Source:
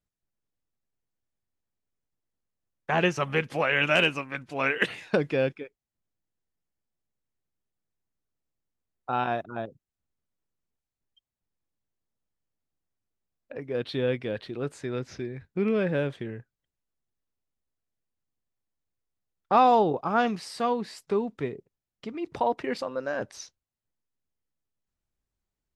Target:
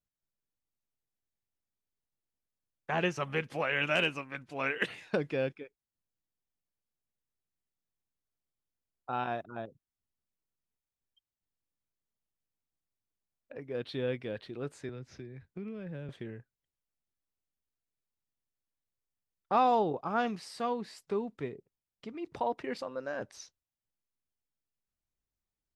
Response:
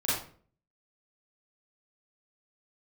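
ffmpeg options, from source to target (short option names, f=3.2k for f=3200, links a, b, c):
-filter_complex "[0:a]asettb=1/sr,asplit=3[a][b][c];[a]atrim=end=14.894[d];[b]atrim=start=14.89:end=16.09,asetpts=PTS-STARTPTS,afade=t=in:d=0.004:c=qsin,afade=t=out:st=1.196:d=0.004:c=qsin,acrossover=split=160[e][f];[f]acompressor=threshold=-39dB:ratio=4[g];[e][g]amix=inputs=2:normalize=0[h];[c]atrim=start=16.086[i];[d][h]acrossfade=d=0.004:c1=hsin:c2=qsin[j];[j][i]acrossfade=d=0.004:c1=qsin:c2=hsin,volume=-6.5dB"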